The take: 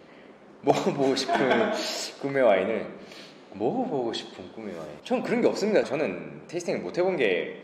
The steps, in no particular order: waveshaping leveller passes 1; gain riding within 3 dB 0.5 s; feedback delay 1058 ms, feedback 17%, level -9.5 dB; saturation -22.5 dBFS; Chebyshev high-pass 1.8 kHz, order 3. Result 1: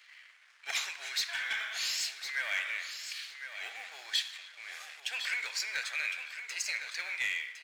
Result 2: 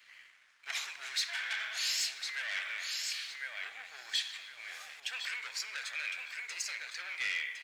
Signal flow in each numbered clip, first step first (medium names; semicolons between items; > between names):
waveshaping leveller > Chebyshev high-pass > saturation > gain riding > feedback delay; feedback delay > saturation > gain riding > Chebyshev high-pass > waveshaping leveller